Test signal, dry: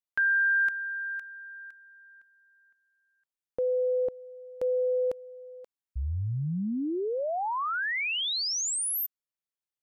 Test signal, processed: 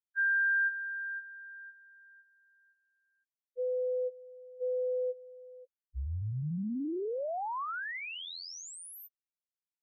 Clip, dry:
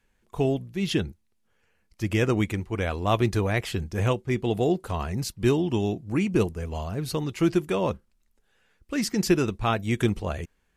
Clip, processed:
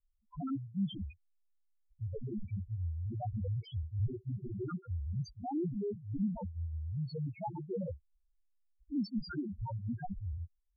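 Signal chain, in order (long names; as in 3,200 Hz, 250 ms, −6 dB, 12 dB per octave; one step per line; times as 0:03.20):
loose part that buzzes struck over −38 dBFS, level −19 dBFS
wrap-around overflow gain 17.5 dB
spectral peaks only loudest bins 1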